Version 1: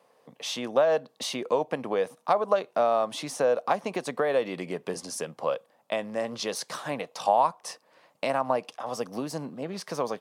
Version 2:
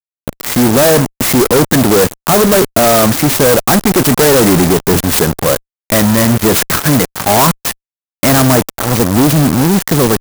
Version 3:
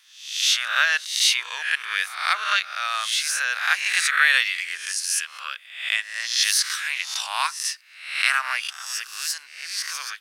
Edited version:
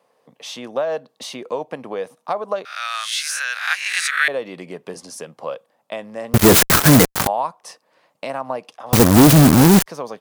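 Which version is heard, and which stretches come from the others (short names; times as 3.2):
1
2.65–4.28 from 3
6.34–7.27 from 2
8.93–9.86 from 2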